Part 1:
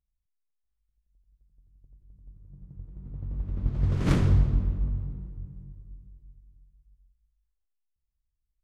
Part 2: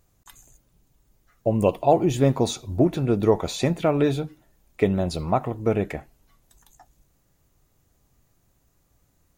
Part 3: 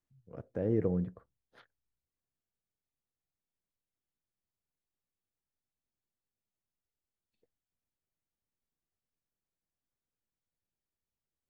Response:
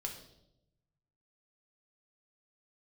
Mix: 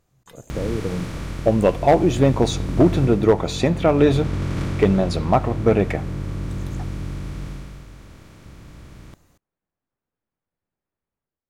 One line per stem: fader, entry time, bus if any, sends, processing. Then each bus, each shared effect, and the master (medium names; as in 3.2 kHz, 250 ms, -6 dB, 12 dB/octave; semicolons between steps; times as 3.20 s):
3.03 s -3.5 dB -> 3.34 s -11.5 dB -> 7.48 s -11.5 dB -> 7.88 s -19 dB, 0.50 s, no send, spectral levelling over time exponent 0.2
-1.5 dB, 0.00 s, send -15 dB, treble shelf 8.4 kHz -10.5 dB
+0.5 dB, 0.00 s, no send, low-pass 1.6 kHz; compression, threshold -32 dBFS, peak gain reduction 8.5 dB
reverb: on, RT60 0.85 s, pre-delay 4 ms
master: bass shelf 69 Hz -7.5 dB; level rider gain up to 10.5 dB; hard clipper -6.5 dBFS, distortion -20 dB